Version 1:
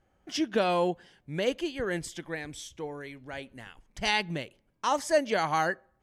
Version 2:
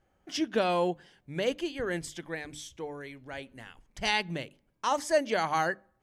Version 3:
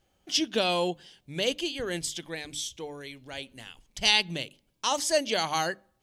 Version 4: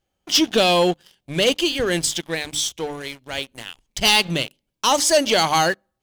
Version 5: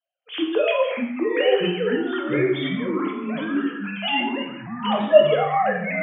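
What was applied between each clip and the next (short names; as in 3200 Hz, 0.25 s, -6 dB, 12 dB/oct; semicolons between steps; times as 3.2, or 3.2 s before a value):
notches 50/100/150/200/250/300 Hz; gain -1 dB
resonant high shelf 2400 Hz +8.5 dB, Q 1.5
sample leveller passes 3
sine-wave speech; non-linear reverb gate 0.23 s falling, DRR 0.5 dB; echoes that change speed 0.46 s, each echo -5 st, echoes 3; gain -4.5 dB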